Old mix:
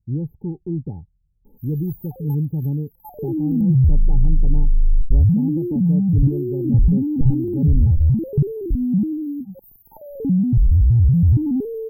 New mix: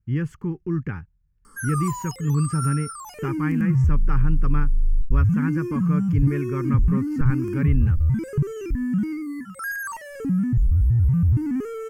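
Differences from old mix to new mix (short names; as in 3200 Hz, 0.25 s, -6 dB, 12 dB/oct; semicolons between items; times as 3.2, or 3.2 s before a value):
background -4.5 dB; master: remove brick-wall FIR band-stop 890–12000 Hz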